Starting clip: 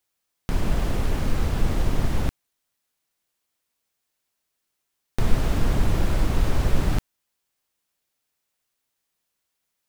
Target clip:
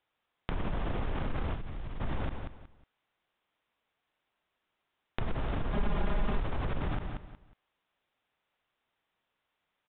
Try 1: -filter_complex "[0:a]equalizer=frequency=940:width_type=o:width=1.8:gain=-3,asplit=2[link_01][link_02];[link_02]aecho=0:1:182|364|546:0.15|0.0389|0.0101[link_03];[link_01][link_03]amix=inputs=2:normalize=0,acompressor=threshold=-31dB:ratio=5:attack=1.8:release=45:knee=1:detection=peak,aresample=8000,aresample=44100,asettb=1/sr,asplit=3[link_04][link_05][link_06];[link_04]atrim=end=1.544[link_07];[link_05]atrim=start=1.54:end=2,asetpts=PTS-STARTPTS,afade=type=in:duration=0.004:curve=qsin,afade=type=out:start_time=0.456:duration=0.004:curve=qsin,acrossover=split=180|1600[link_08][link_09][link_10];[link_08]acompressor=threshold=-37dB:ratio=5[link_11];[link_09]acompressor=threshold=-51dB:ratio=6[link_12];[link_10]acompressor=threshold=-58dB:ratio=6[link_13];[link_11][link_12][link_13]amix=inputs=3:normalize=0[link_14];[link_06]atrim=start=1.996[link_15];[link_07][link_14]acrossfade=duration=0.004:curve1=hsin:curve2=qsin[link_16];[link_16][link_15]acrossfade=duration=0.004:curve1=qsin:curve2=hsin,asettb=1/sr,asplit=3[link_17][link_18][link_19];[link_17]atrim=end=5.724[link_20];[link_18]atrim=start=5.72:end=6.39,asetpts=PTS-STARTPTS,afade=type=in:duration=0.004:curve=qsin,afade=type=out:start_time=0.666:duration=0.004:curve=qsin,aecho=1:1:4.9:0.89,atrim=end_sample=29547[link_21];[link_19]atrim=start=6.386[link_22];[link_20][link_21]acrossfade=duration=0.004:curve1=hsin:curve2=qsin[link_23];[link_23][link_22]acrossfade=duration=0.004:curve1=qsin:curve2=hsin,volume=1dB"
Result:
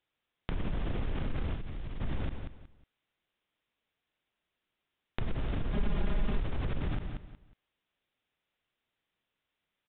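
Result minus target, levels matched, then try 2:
1,000 Hz band −5.5 dB
-filter_complex "[0:a]equalizer=frequency=940:width_type=o:width=1.8:gain=4.5,asplit=2[link_01][link_02];[link_02]aecho=0:1:182|364|546:0.15|0.0389|0.0101[link_03];[link_01][link_03]amix=inputs=2:normalize=0,acompressor=threshold=-31dB:ratio=5:attack=1.8:release=45:knee=1:detection=peak,aresample=8000,aresample=44100,asettb=1/sr,asplit=3[link_04][link_05][link_06];[link_04]atrim=end=1.544[link_07];[link_05]atrim=start=1.54:end=2,asetpts=PTS-STARTPTS,afade=type=in:duration=0.004:curve=qsin,afade=type=out:start_time=0.456:duration=0.004:curve=qsin,acrossover=split=180|1600[link_08][link_09][link_10];[link_08]acompressor=threshold=-37dB:ratio=5[link_11];[link_09]acompressor=threshold=-51dB:ratio=6[link_12];[link_10]acompressor=threshold=-58dB:ratio=6[link_13];[link_11][link_12][link_13]amix=inputs=3:normalize=0[link_14];[link_06]atrim=start=1.996[link_15];[link_07][link_14]acrossfade=duration=0.004:curve1=hsin:curve2=qsin[link_16];[link_16][link_15]acrossfade=duration=0.004:curve1=qsin:curve2=hsin,asettb=1/sr,asplit=3[link_17][link_18][link_19];[link_17]atrim=end=5.724[link_20];[link_18]atrim=start=5.72:end=6.39,asetpts=PTS-STARTPTS,afade=type=in:duration=0.004:curve=qsin,afade=type=out:start_time=0.666:duration=0.004:curve=qsin,aecho=1:1:4.9:0.89,atrim=end_sample=29547[link_21];[link_19]atrim=start=6.386[link_22];[link_20][link_21]acrossfade=duration=0.004:curve1=hsin:curve2=qsin[link_23];[link_23][link_22]acrossfade=duration=0.004:curve1=qsin:curve2=hsin,volume=1dB"

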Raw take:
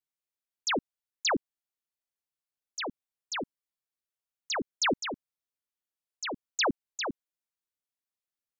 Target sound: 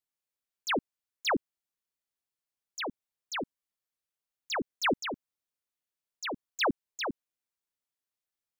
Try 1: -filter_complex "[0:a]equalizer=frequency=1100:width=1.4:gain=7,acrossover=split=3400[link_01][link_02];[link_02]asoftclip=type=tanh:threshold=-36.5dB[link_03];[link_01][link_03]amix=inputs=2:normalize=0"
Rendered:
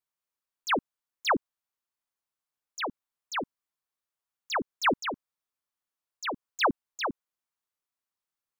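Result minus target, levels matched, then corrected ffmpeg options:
1,000 Hz band +3.0 dB
-filter_complex "[0:a]acrossover=split=3400[link_01][link_02];[link_02]asoftclip=type=tanh:threshold=-36.5dB[link_03];[link_01][link_03]amix=inputs=2:normalize=0"

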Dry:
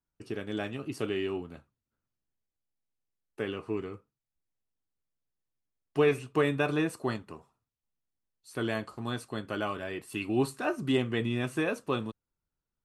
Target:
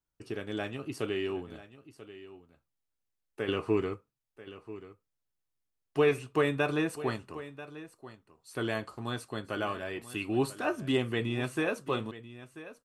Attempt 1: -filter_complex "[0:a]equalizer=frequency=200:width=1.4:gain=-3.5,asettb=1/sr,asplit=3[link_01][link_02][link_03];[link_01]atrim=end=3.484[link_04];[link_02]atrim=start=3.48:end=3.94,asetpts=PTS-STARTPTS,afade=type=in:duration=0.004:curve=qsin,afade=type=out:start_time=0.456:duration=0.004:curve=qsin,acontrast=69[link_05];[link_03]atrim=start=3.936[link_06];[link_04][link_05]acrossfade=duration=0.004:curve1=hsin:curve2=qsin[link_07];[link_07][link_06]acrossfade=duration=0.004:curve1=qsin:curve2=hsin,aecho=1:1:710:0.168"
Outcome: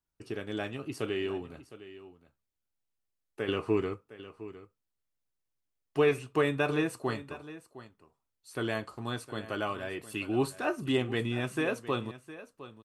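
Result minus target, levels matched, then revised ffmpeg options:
echo 278 ms early
-filter_complex "[0:a]equalizer=frequency=200:width=1.4:gain=-3.5,asettb=1/sr,asplit=3[link_01][link_02][link_03];[link_01]atrim=end=3.484[link_04];[link_02]atrim=start=3.48:end=3.94,asetpts=PTS-STARTPTS,afade=type=in:duration=0.004:curve=qsin,afade=type=out:start_time=0.456:duration=0.004:curve=qsin,acontrast=69[link_05];[link_03]atrim=start=3.936[link_06];[link_04][link_05]acrossfade=duration=0.004:curve1=hsin:curve2=qsin[link_07];[link_07][link_06]acrossfade=duration=0.004:curve1=qsin:curve2=hsin,aecho=1:1:988:0.168"

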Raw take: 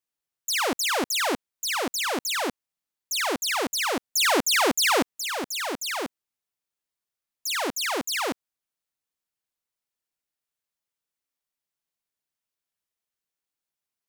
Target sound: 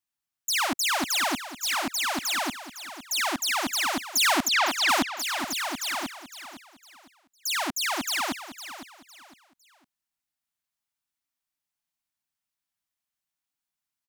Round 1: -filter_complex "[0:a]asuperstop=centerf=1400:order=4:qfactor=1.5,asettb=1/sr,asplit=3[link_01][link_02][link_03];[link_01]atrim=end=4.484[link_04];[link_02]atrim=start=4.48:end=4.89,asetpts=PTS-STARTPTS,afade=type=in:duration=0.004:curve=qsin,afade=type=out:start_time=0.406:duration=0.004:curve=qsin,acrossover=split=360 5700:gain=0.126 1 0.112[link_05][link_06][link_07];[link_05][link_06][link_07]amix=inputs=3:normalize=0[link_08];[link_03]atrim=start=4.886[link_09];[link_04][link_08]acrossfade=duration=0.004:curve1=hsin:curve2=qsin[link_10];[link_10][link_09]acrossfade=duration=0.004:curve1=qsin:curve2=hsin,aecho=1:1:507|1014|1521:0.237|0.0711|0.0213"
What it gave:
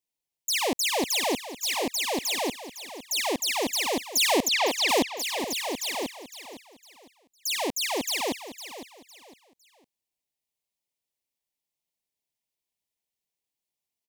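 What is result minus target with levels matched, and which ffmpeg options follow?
500 Hz band +7.5 dB
-filter_complex "[0:a]asuperstop=centerf=460:order=4:qfactor=1.5,asettb=1/sr,asplit=3[link_01][link_02][link_03];[link_01]atrim=end=4.484[link_04];[link_02]atrim=start=4.48:end=4.89,asetpts=PTS-STARTPTS,afade=type=in:duration=0.004:curve=qsin,afade=type=out:start_time=0.406:duration=0.004:curve=qsin,acrossover=split=360 5700:gain=0.126 1 0.112[link_05][link_06][link_07];[link_05][link_06][link_07]amix=inputs=3:normalize=0[link_08];[link_03]atrim=start=4.886[link_09];[link_04][link_08]acrossfade=duration=0.004:curve1=hsin:curve2=qsin[link_10];[link_10][link_09]acrossfade=duration=0.004:curve1=qsin:curve2=hsin,aecho=1:1:507|1014|1521:0.237|0.0711|0.0213"

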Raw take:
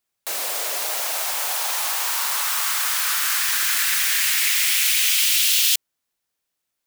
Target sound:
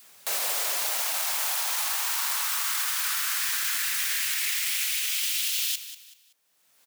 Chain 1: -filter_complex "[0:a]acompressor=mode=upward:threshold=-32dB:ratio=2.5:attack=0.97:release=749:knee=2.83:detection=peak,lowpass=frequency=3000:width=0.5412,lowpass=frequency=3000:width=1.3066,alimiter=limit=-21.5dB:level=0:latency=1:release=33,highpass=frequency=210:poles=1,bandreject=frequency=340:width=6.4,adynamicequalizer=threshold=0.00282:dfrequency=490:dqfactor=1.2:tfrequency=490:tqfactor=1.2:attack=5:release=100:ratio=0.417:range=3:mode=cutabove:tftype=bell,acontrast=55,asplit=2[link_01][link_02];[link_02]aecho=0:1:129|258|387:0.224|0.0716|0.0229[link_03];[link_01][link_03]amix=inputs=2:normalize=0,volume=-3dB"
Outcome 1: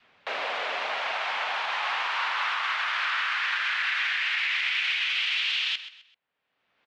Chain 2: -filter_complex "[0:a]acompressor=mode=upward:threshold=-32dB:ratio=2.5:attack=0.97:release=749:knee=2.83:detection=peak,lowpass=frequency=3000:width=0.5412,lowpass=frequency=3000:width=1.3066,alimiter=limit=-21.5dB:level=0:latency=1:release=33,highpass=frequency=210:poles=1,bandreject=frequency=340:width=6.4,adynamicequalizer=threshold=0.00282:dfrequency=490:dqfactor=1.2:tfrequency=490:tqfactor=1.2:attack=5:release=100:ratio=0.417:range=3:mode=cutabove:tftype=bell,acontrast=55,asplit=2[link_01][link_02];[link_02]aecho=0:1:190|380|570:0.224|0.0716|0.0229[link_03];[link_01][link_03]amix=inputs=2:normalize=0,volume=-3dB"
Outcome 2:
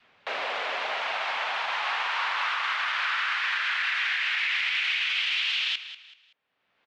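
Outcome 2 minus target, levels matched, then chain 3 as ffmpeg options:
4,000 Hz band +2.5 dB
-filter_complex "[0:a]acompressor=mode=upward:threshold=-32dB:ratio=2.5:attack=0.97:release=749:knee=2.83:detection=peak,alimiter=limit=-21.5dB:level=0:latency=1:release=33,highpass=frequency=210:poles=1,bandreject=frequency=340:width=6.4,adynamicequalizer=threshold=0.00282:dfrequency=490:dqfactor=1.2:tfrequency=490:tqfactor=1.2:attack=5:release=100:ratio=0.417:range=3:mode=cutabove:tftype=bell,acontrast=55,asplit=2[link_01][link_02];[link_02]aecho=0:1:190|380|570:0.224|0.0716|0.0229[link_03];[link_01][link_03]amix=inputs=2:normalize=0,volume=-3dB"

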